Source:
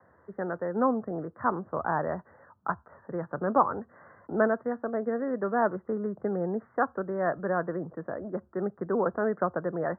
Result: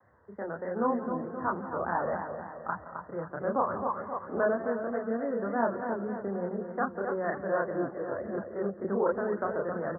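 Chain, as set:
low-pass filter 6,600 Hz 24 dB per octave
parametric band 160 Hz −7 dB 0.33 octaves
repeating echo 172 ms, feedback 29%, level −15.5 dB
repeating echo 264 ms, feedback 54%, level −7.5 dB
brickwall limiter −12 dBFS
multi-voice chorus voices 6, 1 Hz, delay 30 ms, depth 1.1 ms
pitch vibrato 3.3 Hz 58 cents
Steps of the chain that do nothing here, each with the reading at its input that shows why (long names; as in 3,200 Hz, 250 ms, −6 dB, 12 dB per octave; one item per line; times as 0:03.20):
low-pass filter 6,600 Hz: nothing at its input above 1,900 Hz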